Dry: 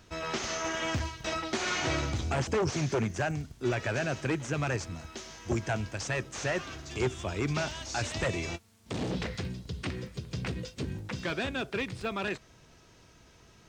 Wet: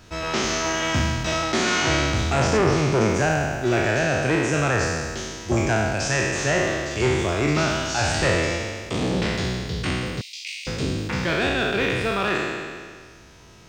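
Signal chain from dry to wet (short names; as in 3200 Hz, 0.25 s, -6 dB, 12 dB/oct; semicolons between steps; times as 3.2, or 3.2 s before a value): spectral trails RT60 1.82 s; 2.57–3.01 bell 6400 Hz -7 dB 0.87 oct; 10.21–10.67 steep high-pass 2200 Hz 72 dB/oct; gain +6 dB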